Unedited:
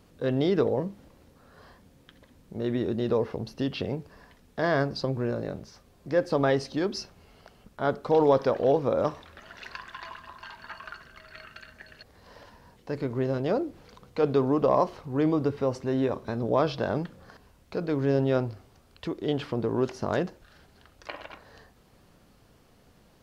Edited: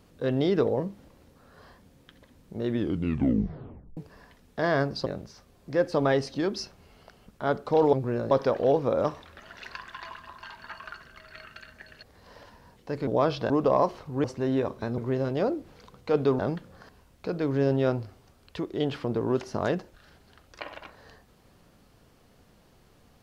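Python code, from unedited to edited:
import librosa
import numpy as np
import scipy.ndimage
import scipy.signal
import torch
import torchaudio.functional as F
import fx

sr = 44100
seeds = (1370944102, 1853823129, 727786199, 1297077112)

y = fx.edit(x, sr, fx.tape_stop(start_s=2.71, length_s=1.26),
    fx.move(start_s=5.06, length_s=0.38, to_s=8.31),
    fx.swap(start_s=13.07, length_s=1.41, other_s=16.44, other_length_s=0.43),
    fx.cut(start_s=15.22, length_s=0.48), tone=tone)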